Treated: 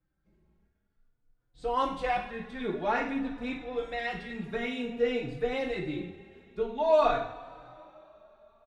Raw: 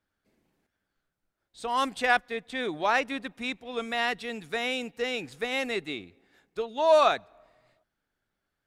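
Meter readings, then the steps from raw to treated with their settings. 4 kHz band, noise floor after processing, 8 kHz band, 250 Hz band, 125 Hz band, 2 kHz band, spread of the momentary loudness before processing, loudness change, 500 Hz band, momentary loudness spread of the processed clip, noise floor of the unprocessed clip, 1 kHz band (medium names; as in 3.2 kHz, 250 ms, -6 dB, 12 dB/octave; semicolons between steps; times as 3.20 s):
-9.0 dB, -77 dBFS, under -10 dB, +2.0 dB, +7.0 dB, -7.0 dB, 13 LU, -3.0 dB, -1.0 dB, 17 LU, -83 dBFS, -3.0 dB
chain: RIAA curve playback; two-slope reverb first 0.5 s, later 3.5 s, from -20 dB, DRR -0.5 dB; endless flanger 3.4 ms +0.51 Hz; trim -3.5 dB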